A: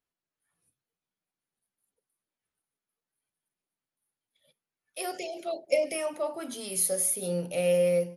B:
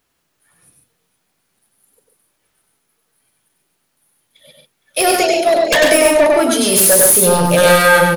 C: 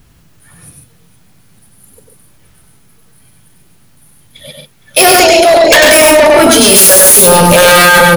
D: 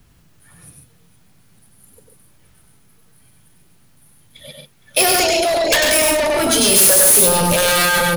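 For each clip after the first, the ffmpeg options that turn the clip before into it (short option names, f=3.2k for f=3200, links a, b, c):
-filter_complex "[0:a]aeval=exprs='0.237*sin(PI/2*5.01*val(0)/0.237)':c=same,asplit=2[a][b];[b]aecho=0:1:98|139|463:0.708|0.447|0.119[c];[a][c]amix=inputs=2:normalize=0,volume=4dB"
-filter_complex "[0:a]acrossover=split=180|6600[a][b][c];[a]acompressor=mode=upward:threshold=-45dB:ratio=2.5[d];[d][b][c]amix=inputs=3:normalize=0,apsyclip=16dB,volume=-1.5dB"
-filter_complex "[0:a]acrossover=split=130|3000[a][b][c];[b]acompressor=threshold=-8dB:ratio=6[d];[a][d][c]amix=inputs=3:normalize=0,volume=-7dB"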